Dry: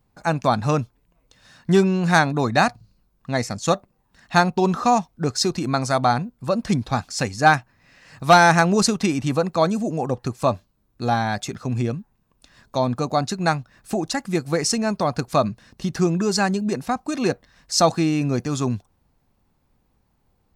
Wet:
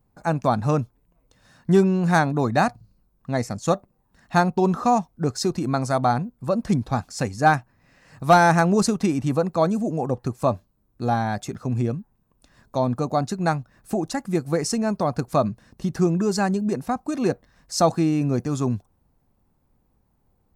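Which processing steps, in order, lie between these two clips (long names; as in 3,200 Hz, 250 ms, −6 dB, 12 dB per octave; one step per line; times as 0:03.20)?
parametric band 3,500 Hz −8.5 dB 2.5 octaves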